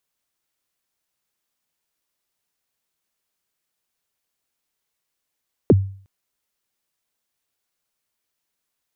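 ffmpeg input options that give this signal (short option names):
-f lavfi -i "aevalsrc='0.501*pow(10,-3*t/0.47)*sin(2*PI*(510*0.035/log(97/510)*(exp(log(97/510)*min(t,0.035)/0.035)-1)+97*max(t-0.035,0)))':d=0.36:s=44100"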